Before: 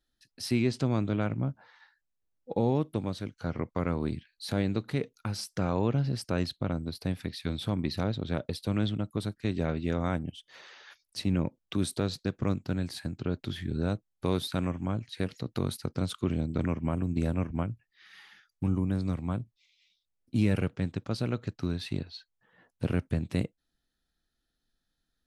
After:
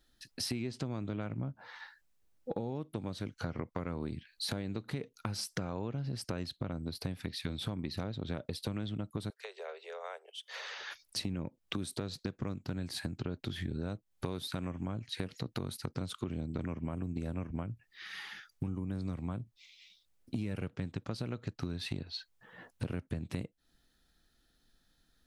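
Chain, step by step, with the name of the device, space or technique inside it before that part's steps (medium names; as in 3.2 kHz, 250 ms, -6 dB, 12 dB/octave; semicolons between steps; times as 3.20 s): serial compression, peaks first (compression 6:1, threshold -38 dBFS, peak gain reduction 16.5 dB; compression 1.5:1, threshold -52 dBFS, peak gain reduction 6.5 dB); 9.30–10.79 s: steep high-pass 410 Hz 96 dB/octave; trim +9.5 dB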